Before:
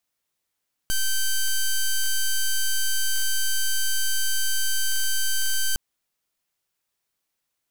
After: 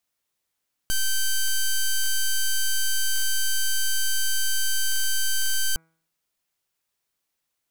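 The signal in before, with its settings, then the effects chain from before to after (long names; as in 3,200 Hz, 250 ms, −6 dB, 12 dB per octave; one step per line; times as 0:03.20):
pulse wave 1,550 Hz, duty 7% −21.5 dBFS 4.86 s
hum removal 162.7 Hz, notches 15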